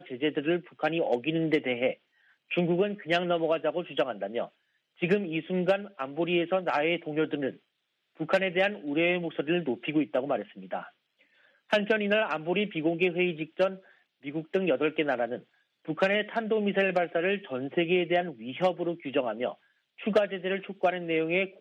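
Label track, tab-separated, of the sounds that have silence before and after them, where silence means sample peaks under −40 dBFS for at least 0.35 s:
2.510000	4.460000	sound
5.020000	7.520000	sound
8.200000	10.860000	sound
11.700000	13.770000	sound
14.250000	15.390000	sound
15.880000	19.530000	sound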